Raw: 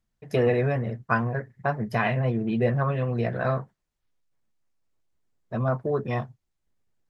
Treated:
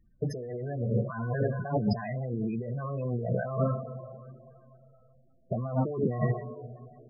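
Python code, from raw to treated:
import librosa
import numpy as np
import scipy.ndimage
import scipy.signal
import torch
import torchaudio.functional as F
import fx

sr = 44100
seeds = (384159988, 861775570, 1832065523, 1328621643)

y = fx.rev_double_slope(x, sr, seeds[0], early_s=0.72, late_s=3.1, knee_db=-20, drr_db=9.0)
y = fx.over_compress(y, sr, threshold_db=-36.0, ratio=-1.0)
y = fx.spec_topn(y, sr, count=16)
y = fx.high_shelf_res(y, sr, hz=3200.0, db=13.5, q=3.0, at=(5.67, 6.21))
y = F.gain(torch.from_numpy(y), 5.5).numpy()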